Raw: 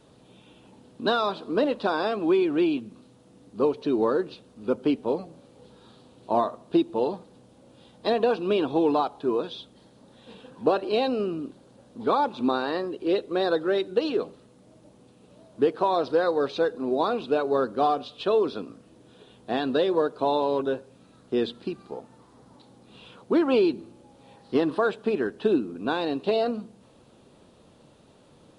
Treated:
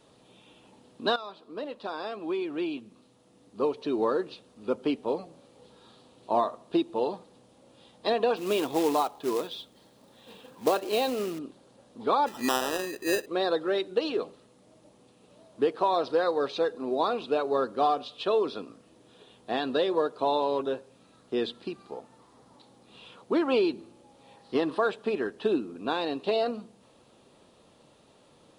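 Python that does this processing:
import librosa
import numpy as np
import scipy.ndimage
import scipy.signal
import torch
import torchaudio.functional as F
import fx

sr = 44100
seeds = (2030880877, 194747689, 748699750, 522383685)

y = fx.quant_float(x, sr, bits=2, at=(8.36, 11.39))
y = fx.sample_hold(y, sr, seeds[0], rate_hz=2200.0, jitter_pct=0, at=(12.26, 13.25), fade=0.02)
y = fx.edit(y, sr, fx.fade_in_from(start_s=1.16, length_s=2.88, floor_db=-14.5), tone=tone)
y = fx.low_shelf(y, sr, hz=350.0, db=-8.0)
y = fx.notch(y, sr, hz=1500.0, q=17.0)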